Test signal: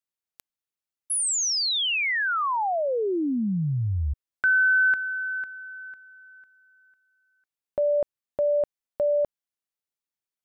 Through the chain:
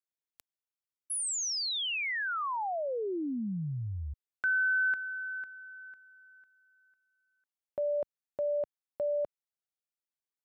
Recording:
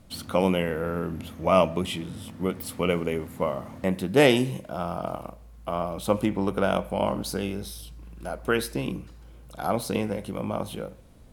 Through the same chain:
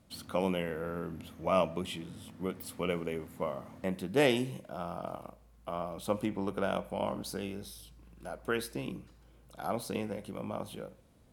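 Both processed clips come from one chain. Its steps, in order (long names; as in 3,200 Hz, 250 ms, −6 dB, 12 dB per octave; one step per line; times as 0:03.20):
high-pass filter 85 Hz 6 dB per octave
level −8 dB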